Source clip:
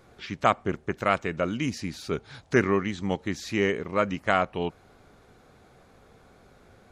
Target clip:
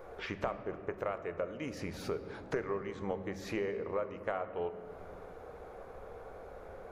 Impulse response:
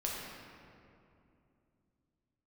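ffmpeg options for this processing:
-filter_complex "[0:a]equalizer=f=125:t=o:w=1:g=-9,equalizer=f=250:t=o:w=1:g=-7,equalizer=f=500:t=o:w=1:g=11,equalizer=f=1k:t=o:w=1:g=4,equalizer=f=4k:t=o:w=1:g=-8,equalizer=f=8k:t=o:w=1:g=-8,acompressor=threshold=-38dB:ratio=5,asplit=2[a][b];[1:a]atrim=start_sample=2205,lowshelf=f=220:g=12[c];[b][c]afir=irnorm=-1:irlink=0,volume=-11dB[d];[a][d]amix=inputs=2:normalize=0"

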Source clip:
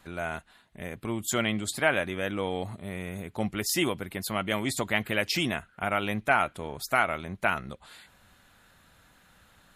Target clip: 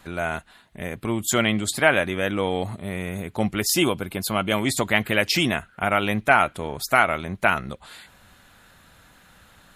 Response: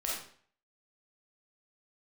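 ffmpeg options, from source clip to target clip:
-filter_complex "[0:a]asettb=1/sr,asplit=3[a][b][c];[a]atrim=end=3.734[d];[b]atrim=start=3.73:end=4.58,asetpts=PTS-STARTPTS,afade=t=in:d=0.004:c=qsin,afade=t=out:st=0.846:d=0.004:c=qsin,bandreject=f=1.9k:w=5.5[e];[c]atrim=start=4.576[f];[d][e]acrossfade=d=0.004:c1=hsin:c2=qsin[g];[g][f]acrossfade=d=0.004:c1=qsin:c2=hsin,volume=6.5dB"

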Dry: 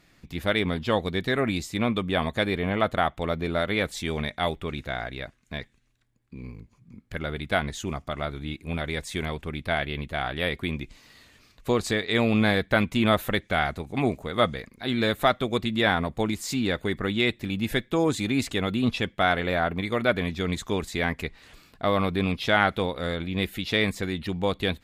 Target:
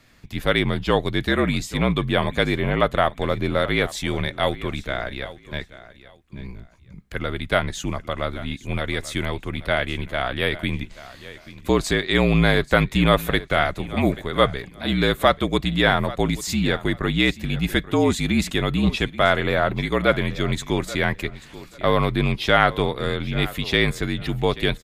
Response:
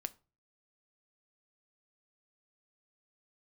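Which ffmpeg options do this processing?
-af "aecho=1:1:834|1668:0.141|0.0311,afreqshift=-50,volume=4.5dB"

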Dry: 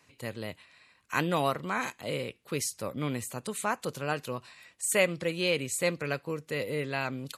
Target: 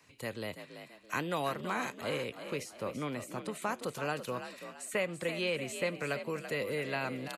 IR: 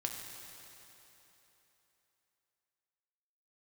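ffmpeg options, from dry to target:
-filter_complex "[0:a]asettb=1/sr,asplit=3[a][b][c];[a]atrim=end=2.404[d];[b]atrim=start=2.4:end=3.62,asetpts=PTS-STARTPTS,afade=t=in:d=0.004:c=qsin,afade=t=out:st=1.216:d=0.004:c=qsin,highshelf=f=3.6k:g=-10.5[e];[c]atrim=start=3.616[f];[d][e]acrossfade=d=0.004:c1=hsin:c2=qsin[g];[g][f]acrossfade=d=0.004:c1=qsin:c2=hsin,acrossover=split=210|490|2900[h][i][j][k];[h]acompressor=threshold=-47dB:ratio=4[l];[i]acompressor=threshold=-40dB:ratio=4[m];[j]acompressor=threshold=-33dB:ratio=4[n];[k]acompressor=threshold=-46dB:ratio=4[o];[l][m][n][o]amix=inputs=4:normalize=0,asplit=5[p][q][r][s][t];[q]adelay=334,afreqshift=49,volume=-10dB[u];[r]adelay=668,afreqshift=98,volume=-18.4dB[v];[s]adelay=1002,afreqshift=147,volume=-26.8dB[w];[t]adelay=1336,afreqshift=196,volume=-35.2dB[x];[p][u][v][w][x]amix=inputs=5:normalize=0"

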